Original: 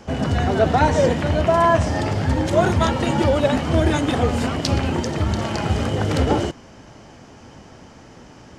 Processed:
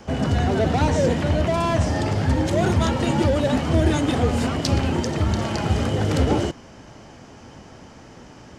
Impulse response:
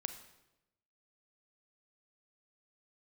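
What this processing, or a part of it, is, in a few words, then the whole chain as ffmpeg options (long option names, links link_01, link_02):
one-band saturation: -filter_complex "[0:a]acrossover=split=450|4000[link_01][link_02][link_03];[link_02]asoftclip=type=tanh:threshold=-23.5dB[link_04];[link_01][link_04][link_03]amix=inputs=3:normalize=0"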